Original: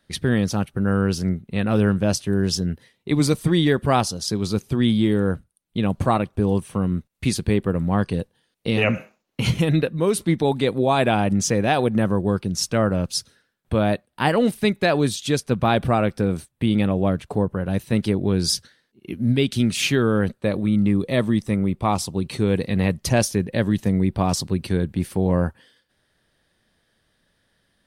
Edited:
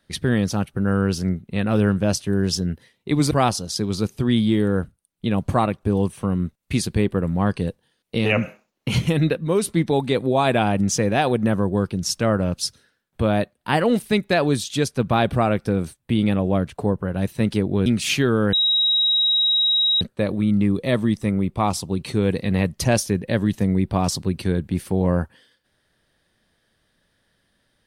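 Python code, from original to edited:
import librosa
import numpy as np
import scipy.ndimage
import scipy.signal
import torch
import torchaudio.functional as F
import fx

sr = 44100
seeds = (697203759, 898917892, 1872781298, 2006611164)

y = fx.edit(x, sr, fx.cut(start_s=3.31, length_s=0.52),
    fx.cut(start_s=18.38, length_s=1.21),
    fx.insert_tone(at_s=20.26, length_s=1.48, hz=3820.0, db=-15.5), tone=tone)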